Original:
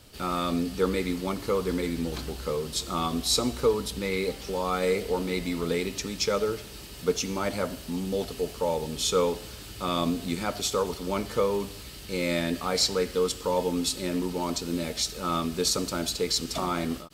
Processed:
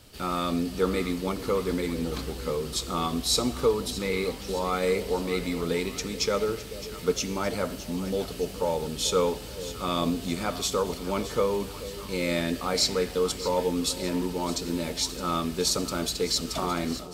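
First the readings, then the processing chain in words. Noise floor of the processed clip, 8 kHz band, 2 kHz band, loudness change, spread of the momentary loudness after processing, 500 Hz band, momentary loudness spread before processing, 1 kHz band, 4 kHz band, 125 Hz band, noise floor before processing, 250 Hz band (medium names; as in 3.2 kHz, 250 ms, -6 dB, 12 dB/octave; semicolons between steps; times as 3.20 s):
-39 dBFS, 0.0 dB, 0.0 dB, 0.0 dB, 7 LU, +0.5 dB, 7 LU, 0.0 dB, 0.0 dB, +0.5 dB, -42 dBFS, 0.0 dB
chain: two-band feedback delay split 760 Hz, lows 434 ms, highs 615 ms, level -14 dB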